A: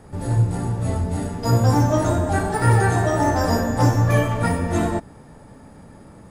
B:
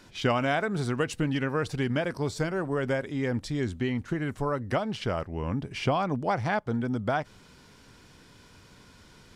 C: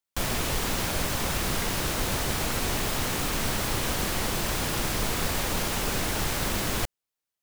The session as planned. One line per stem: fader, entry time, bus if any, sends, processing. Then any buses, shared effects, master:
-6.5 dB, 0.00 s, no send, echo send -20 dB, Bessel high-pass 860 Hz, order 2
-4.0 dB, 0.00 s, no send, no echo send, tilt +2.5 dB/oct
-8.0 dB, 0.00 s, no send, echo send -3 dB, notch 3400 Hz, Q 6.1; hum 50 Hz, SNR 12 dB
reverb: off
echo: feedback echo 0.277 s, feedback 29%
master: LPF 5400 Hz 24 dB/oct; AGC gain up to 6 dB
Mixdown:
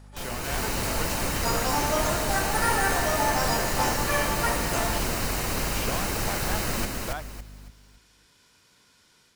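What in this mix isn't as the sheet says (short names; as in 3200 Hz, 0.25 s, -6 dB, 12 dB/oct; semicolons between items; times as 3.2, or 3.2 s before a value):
stem B -4.0 dB -> -13.5 dB; master: missing LPF 5400 Hz 24 dB/oct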